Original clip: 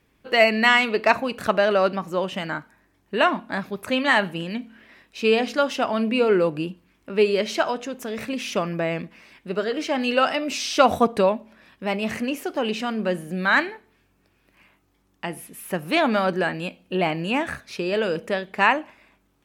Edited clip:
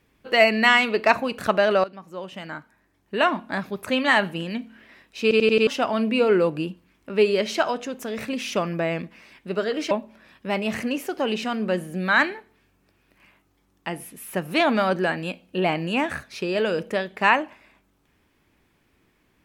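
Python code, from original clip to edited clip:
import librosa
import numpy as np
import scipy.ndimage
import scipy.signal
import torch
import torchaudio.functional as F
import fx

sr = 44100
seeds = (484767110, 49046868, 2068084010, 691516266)

y = fx.edit(x, sr, fx.fade_in_from(start_s=1.84, length_s=1.64, floor_db=-17.5),
    fx.stutter_over(start_s=5.22, slice_s=0.09, count=5),
    fx.cut(start_s=9.91, length_s=1.37), tone=tone)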